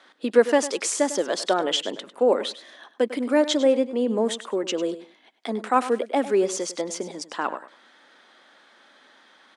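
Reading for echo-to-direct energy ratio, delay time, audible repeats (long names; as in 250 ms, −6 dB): −14.0 dB, 100 ms, 2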